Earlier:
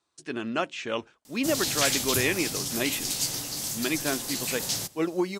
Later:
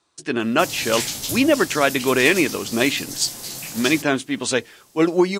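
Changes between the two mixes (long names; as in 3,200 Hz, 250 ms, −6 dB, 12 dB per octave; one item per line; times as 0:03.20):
speech +10.0 dB
background: entry −0.85 s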